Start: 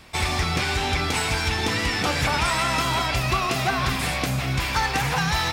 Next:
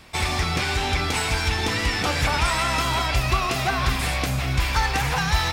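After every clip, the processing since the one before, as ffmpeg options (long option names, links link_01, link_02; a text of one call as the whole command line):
ffmpeg -i in.wav -af "asubboost=boost=3.5:cutoff=80" out.wav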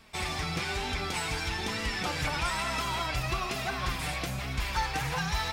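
ffmpeg -i in.wav -af "flanger=delay=4.3:depth=2.4:regen=36:speed=1.1:shape=triangular,volume=-4.5dB" out.wav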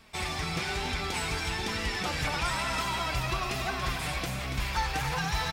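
ffmpeg -i in.wav -af "aecho=1:1:284:0.398" out.wav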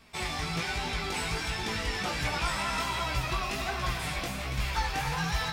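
ffmpeg -i in.wav -af "flanger=delay=16.5:depth=3.9:speed=1.3,volume=2.5dB" out.wav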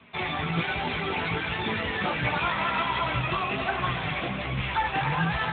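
ffmpeg -i in.wav -af "volume=6.5dB" -ar 8000 -c:a libopencore_amrnb -b:a 12200 out.amr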